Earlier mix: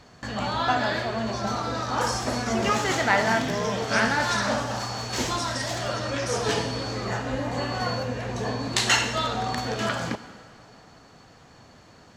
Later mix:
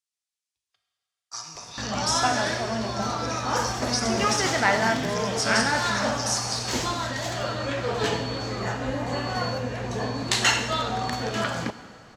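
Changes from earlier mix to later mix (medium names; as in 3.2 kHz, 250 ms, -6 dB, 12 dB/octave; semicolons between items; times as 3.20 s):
speech +7.5 dB; background: entry +1.55 s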